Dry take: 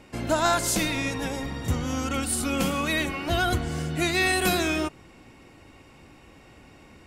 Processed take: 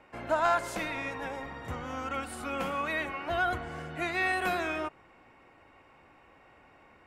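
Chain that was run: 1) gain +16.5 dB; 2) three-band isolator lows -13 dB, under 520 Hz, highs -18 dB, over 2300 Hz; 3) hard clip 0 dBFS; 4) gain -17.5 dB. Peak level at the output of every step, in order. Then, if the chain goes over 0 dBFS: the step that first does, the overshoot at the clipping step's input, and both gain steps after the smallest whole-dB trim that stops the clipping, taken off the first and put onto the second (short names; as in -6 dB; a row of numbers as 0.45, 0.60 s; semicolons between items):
+6.0, +4.5, 0.0, -17.5 dBFS; step 1, 4.5 dB; step 1 +11.5 dB, step 4 -12.5 dB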